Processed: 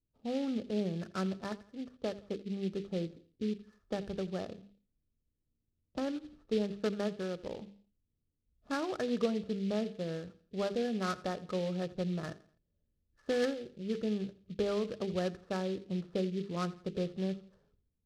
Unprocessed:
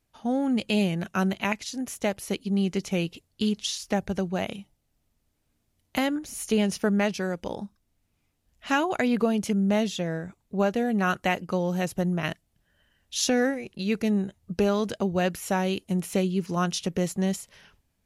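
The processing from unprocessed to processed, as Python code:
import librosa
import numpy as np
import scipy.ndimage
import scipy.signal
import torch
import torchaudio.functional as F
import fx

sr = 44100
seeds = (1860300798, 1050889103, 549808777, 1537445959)

y = fx.env_lowpass(x, sr, base_hz=320.0, full_db=-23.0)
y = scipy.signal.sosfilt(scipy.signal.cheby1(6, 9, 1800.0, 'lowpass', fs=sr, output='sos'), y)
y = fx.low_shelf(y, sr, hz=210.0, db=8.0)
y = fx.hum_notches(y, sr, base_hz=50, count=9)
y = fx.echo_feedback(y, sr, ms=84, feedback_pct=38, wet_db=-19.0)
y = fx.noise_mod_delay(y, sr, seeds[0], noise_hz=3100.0, depth_ms=0.048)
y = y * 10.0 ** (-6.0 / 20.0)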